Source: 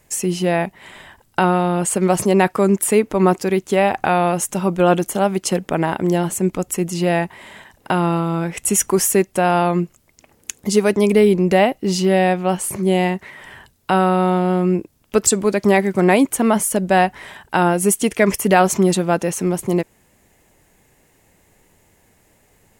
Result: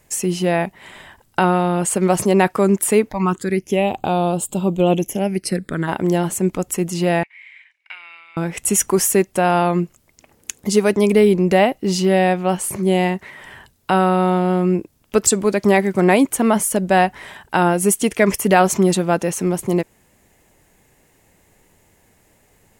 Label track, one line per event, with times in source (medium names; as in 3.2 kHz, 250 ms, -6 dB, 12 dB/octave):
3.090000	5.870000	phase shifter stages 8, 0.31 Hz -> 0.091 Hz, lowest notch 130–1900 Hz
7.230000	8.370000	ladder band-pass 2.3 kHz, resonance 90%